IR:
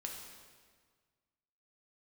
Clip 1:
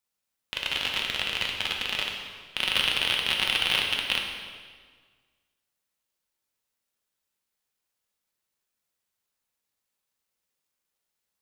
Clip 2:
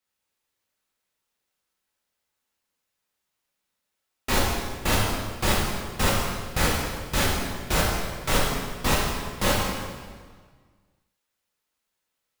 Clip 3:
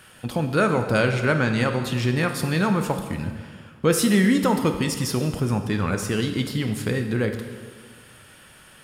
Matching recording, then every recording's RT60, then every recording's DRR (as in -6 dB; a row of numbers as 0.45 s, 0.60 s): 1; 1.7 s, 1.7 s, 1.6 s; 0.0 dB, -6.0 dB, 5.5 dB